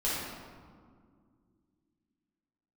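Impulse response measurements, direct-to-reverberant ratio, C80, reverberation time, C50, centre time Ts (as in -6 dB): -9.0 dB, 0.5 dB, 2.0 s, -2.5 dB, 0.11 s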